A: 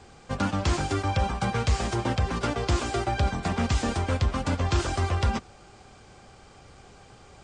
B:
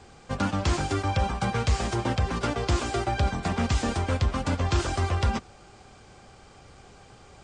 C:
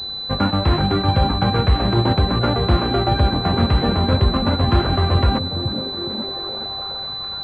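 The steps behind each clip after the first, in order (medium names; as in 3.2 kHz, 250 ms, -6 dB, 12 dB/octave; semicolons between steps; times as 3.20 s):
no audible change
on a send: repeats whose band climbs or falls 420 ms, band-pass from 150 Hz, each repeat 0.7 oct, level -1 dB; on the sum: class-D stage that switches slowly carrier 4 kHz; trim +8 dB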